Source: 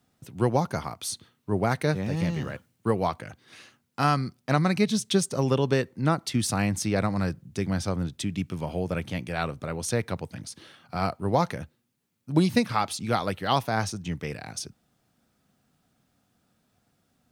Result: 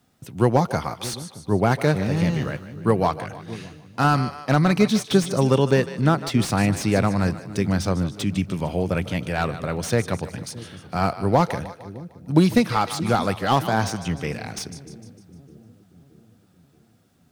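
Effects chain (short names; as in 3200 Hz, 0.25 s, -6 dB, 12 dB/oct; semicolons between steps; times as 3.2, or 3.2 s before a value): split-band echo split 400 Hz, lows 0.624 s, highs 0.151 s, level -14.5 dB; slew limiter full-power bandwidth 120 Hz; gain +5.5 dB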